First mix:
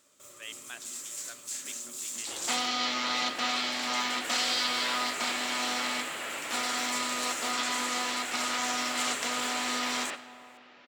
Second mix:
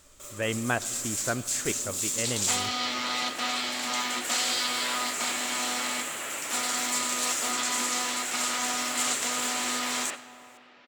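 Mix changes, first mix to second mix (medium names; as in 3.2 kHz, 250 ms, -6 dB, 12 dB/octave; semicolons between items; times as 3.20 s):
speech: remove band-pass filter 4.2 kHz, Q 2.6; first sound +7.5 dB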